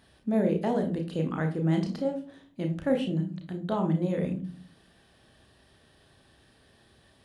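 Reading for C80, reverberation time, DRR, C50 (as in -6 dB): 16.5 dB, 0.40 s, 2.5 dB, 10.0 dB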